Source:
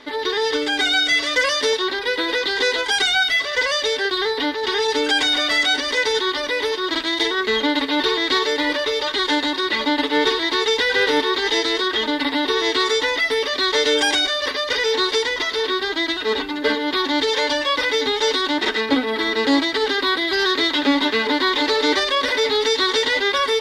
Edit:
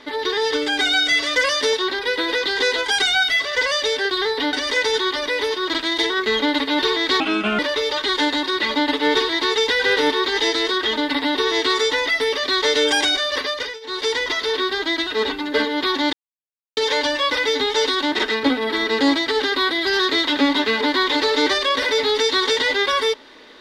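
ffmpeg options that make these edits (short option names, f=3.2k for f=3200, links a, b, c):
-filter_complex "[0:a]asplit=7[a][b][c][d][e][f][g];[a]atrim=end=4.532[h];[b]atrim=start=5.738:end=8.414[i];[c]atrim=start=8.41:end=8.69,asetpts=PTS-STARTPTS,asetrate=31752,aresample=44100[j];[d]atrim=start=8.686:end=14.9,asetpts=PTS-STARTPTS,afade=t=out:st=5.884:d=0.33:silence=0.0749894[k];[e]atrim=start=14.9:end=14.91,asetpts=PTS-STARTPTS,volume=-22.5dB[l];[f]atrim=start=14.91:end=17.23,asetpts=PTS-STARTPTS,afade=t=in:d=0.33:silence=0.0749894,afade=t=out:st=2.316:d=0.004:c=hsin,apad=pad_dur=0.64[m];[g]atrim=start=17.23,asetpts=PTS-STARTPTS,afade=t=in:d=0.004:c=hsin[n];[h][i]acrossfade=d=0.004:c1=hsin:c2=hsin[o];[o][j]acrossfade=d=0.004:c1=hsin:c2=hsin[p];[k][l][m][n]concat=n=4:v=0:a=1[q];[p][q]acrossfade=d=0.004:c1=hsin:c2=hsin"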